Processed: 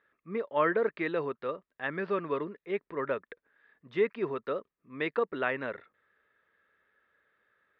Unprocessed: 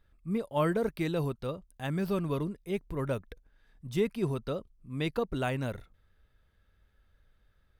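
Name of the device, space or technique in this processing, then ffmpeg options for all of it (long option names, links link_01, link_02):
phone earpiece: -af "highpass=380,equalizer=frequency=430:width_type=q:width=4:gain=3,equalizer=frequency=750:width_type=q:width=4:gain=-5,equalizer=frequency=1200:width_type=q:width=4:gain=4,equalizer=frequency=1800:width_type=q:width=4:gain=8,equalizer=frequency=3000:width_type=q:width=4:gain=-4,lowpass=frequency=3100:width=0.5412,lowpass=frequency=3100:width=1.3066,volume=2.5dB"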